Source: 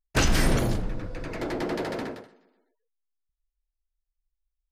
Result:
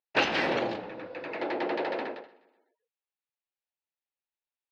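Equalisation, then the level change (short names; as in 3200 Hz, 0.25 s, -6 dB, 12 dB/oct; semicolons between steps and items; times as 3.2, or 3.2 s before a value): speaker cabinet 320–4200 Hz, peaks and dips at 340 Hz +3 dB, 540 Hz +6 dB, 840 Hz +8 dB, 1800 Hz +4 dB, 2600 Hz +7 dB, 4000 Hz +3 dB; -3.0 dB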